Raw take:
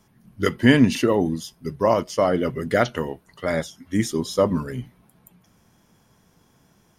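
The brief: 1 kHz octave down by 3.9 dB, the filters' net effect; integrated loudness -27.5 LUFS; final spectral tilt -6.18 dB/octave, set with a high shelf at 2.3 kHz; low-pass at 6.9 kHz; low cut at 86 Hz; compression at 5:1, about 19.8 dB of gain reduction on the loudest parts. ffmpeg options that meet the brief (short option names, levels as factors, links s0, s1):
-af "highpass=86,lowpass=6900,equalizer=f=1000:t=o:g=-4,highshelf=f=2300:g=-6.5,acompressor=threshold=0.02:ratio=5,volume=3.35"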